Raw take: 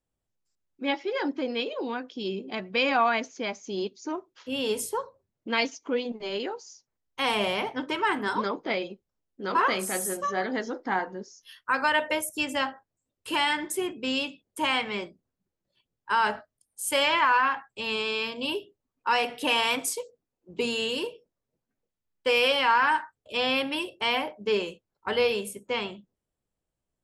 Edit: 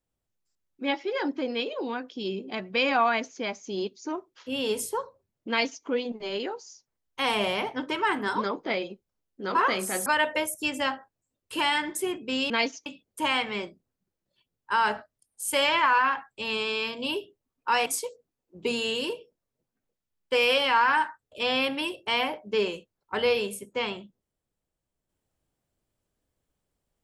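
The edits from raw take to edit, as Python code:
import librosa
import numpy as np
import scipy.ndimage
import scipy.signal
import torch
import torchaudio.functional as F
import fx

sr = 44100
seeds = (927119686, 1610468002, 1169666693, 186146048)

y = fx.edit(x, sr, fx.duplicate(start_s=5.49, length_s=0.36, to_s=14.25),
    fx.cut(start_s=10.06, length_s=1.75),
    fx.cut(start_s=19.25, length_s=0.55), tone=tone)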